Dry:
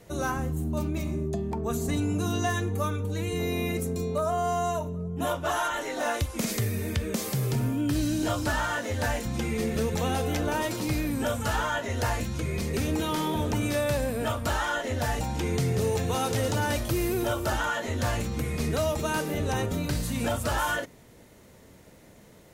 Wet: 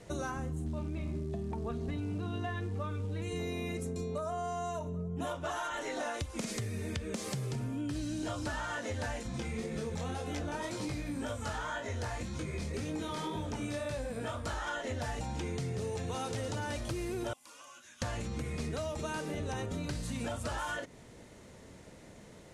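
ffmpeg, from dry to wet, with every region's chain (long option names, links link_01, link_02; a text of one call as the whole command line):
ffmpeg -i in.wav -filter_complex "[0:a]asettb=1/sr,asplit=3[link_01][link_02][link_03];[link_01]atrim=end=0.664[link_04];[link_02]atrim=start=0.66:end=3.22,asetpts=PTS-STARTPTS,afade=type=in:duration=0.004:curve=qsin,afade=type=out:start_time=2.556:duration=0.004:curve=qsin,lowpass=frequency=3600:width=0.5412,lowpass=frequency=3600:width=1.3066,lowshelf=frequency=82:gain=6.5,acrusher=bits=7:mode=log:mix=0:aa=0.000001[link_05];[link_03]atrim=start=3.216[link_06];[link_04][link_05]acrossfade=duration=0.004:curve1=hsin:curve2=qsin[link_07];[link_07][link_06]acrossfade=duration=0.004:curve1=qsin:curve2=hsin,asettb=1/sr,asplit=3[link_08][link_09][link_10];[link_08]atrim=end=9.234[link_11];[link_09]atrim=start=9.23:end=14.67,asetpts=PTS-STARTPTS,afade=type=in:duration=0.004:curve=qsin,afade=type=out:start_time=5.436:duration=0.004:curve=qsin,bandreject=frequency=2800:width=22,flanger=delay=19:depth=5.5:speed=1.9[link_12];[link_10]atrim=start=14.666[link_13];[link_11][link_12]acrossfade=duration=0.004:curve1=hsin:curve2=qsin[link_14];[link_14][link_13]acrossfade=duration=0.004:curve1=qsin:curve2=hsin,asettb=1/sr,asplit=3[link_15][link_16][link_17];[link_15]atrim=end=17.334[link_18];[link_16]atrim=start=17.33:end=18.02,asetpts=PTS-STARTPTS,afade=type=in:duration=0.004:curve=qsin,afade=type=out:start_time=0.686:duration=0.004:curve=qsin,acrossover=split=240|500|1000|2700[link_19][link_20][link_21][link_22][link_23];[link_19]acompressor=threshold=-47dB:ratio=3[link_24];[link_20]acompressor=threshold=-44dB:ratio=3[link_25];[link_21]acompressor=threshold=-43dB:ratio=3[link_26];[link_22]acompressor=threshold=-43dB:ratio=3[link_27];[link_23]acompressor=threshold=-56dB:ratio=3[link_28];[link_24][link_25][link_26][link_27][link_28]amix=inputs=5:normalize=0,afreqshift=-330,aderivative[link_29];[link_17]atrim=start=18.016[link_30];[link_18][link_29]acrossfade=duration=0.004:curve1=hsin:curve2=qsin[link_31];[link_31][link_30]acrossfade=duration=0.004:curve1=qsin:curve2=hsin,lowpass=frequency=9800:width=0.5412,lowpass=frequency=9800:width=1.3066,acompressor=threshold=-34dB:ratio=6" out.wav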